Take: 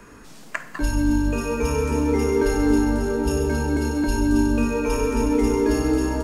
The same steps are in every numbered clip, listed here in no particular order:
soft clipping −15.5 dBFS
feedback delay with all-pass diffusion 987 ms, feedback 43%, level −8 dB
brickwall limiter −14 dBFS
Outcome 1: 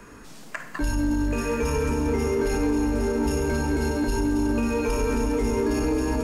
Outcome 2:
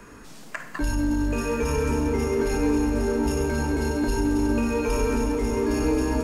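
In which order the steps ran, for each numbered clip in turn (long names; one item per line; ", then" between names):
feedback delay with all-pass diffusion, then brickwall limiter, then soft clipping
brickwall limiter, then soft clipping, then feedback delay with all-pass diffusion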